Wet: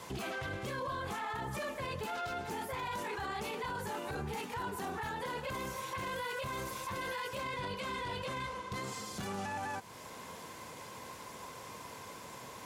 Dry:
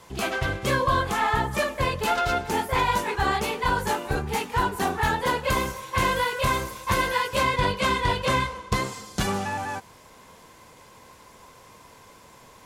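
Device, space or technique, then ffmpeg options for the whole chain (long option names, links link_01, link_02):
podcast mastering chain: -af "highpass=87,deesser=0.65,acompressor=threshold=-42dB:ratio=2,alimiter=level_in=9.5dB:limit=-24dB:level=0:latency=1:release=13,volume=-9.5dB,volume=3dB" -ar 44100 -c:a libmp3lame -b:a 96k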